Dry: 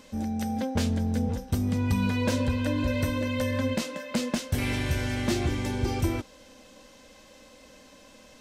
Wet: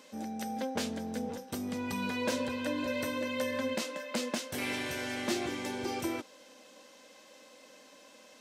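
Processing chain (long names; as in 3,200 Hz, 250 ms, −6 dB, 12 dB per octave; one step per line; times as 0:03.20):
high-pass filter 300 Hz 12 dB per octave
level −2.5 dB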